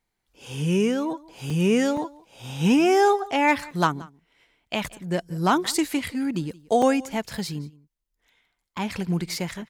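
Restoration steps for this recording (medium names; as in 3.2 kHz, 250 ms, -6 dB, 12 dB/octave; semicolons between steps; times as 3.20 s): clip repair -10 dBFS; interpolate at 1.50/1.97/3.71/6.82/8.56 s, 3.4 ms; inverse comb 176 ms -22 dB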